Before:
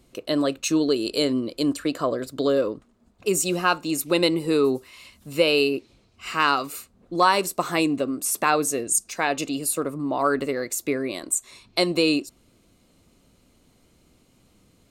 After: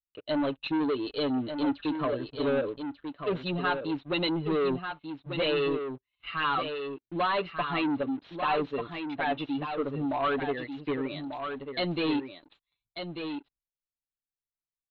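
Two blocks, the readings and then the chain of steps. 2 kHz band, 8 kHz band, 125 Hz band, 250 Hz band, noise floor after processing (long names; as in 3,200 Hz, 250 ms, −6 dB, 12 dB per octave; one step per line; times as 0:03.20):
−6.5 dB, below −40 dB, −2.5 dB, −5.0 dB, below −85 dBFS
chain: spectral dynamics exaggerated over time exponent 1.5
noise gate with hold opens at −55 dBFS
comb filter 6.9 ms, depth 56%
brickwall limiter −12.5 dBFS, peak gain reduction 5.5 dB
leveller curve on the samples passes 3
Chebyshev low-pass with heavy ripple 4,100 Hz, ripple 3 dB
single-tap delay 1,192 ms −7.5 dB
level −8.5 dB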